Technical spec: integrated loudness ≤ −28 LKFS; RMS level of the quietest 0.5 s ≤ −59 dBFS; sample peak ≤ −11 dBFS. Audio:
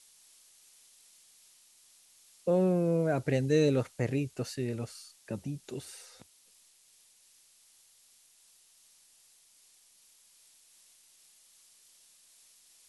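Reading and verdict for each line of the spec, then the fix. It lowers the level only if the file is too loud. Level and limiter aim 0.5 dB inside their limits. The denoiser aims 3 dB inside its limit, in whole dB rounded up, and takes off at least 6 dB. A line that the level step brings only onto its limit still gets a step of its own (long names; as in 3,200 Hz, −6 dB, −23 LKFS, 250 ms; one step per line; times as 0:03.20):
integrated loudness −31.0 LKFS: in spec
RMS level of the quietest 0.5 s −63 dBFS: in spec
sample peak −14.0 dBFS: in spec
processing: no processing needed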